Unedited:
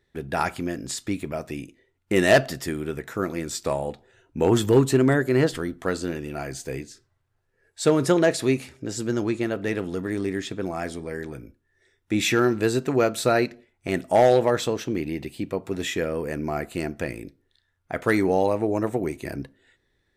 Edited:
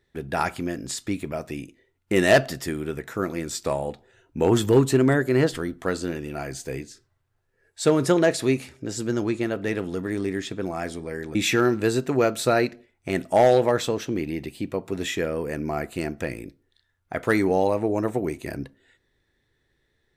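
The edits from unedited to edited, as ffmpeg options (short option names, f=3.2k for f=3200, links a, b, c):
-filter_complex "[0:a]asplit=2[a][b];[a]atrim=end=11.352[c];[b]atrim=start=12.138[d];[c][d]acrossfade=d=0.004:c1=hsin:c2=hsin"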